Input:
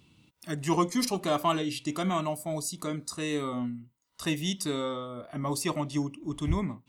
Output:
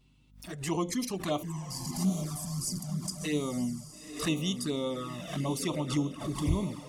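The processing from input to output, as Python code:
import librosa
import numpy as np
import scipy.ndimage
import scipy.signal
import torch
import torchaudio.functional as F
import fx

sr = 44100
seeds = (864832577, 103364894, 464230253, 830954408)

y = fx.delta_mod(x, sr, bps=64000, step_db=-31.5, at=(1.7, 2.8))
y = fx.spec_erase(y, sr, start_s=1.42, length_s=1.82, low_hz=260.0, high_hz=4400.0)
y = fx.rider(y, sr, range_db=4, speed_s=0.5)
y = fx.echo_diffused(y, sr, ms=922, feedback_pct=40, wet_db=-9.0)
y = fx.env_flanger(y, sr, rest_ms=8.1, full_db=-26.5)
y = fx.add_hum(y, sr, base_hz=50, snr_db=33)
y = fx.pre_swell(y, sr, db_per_s=110.0)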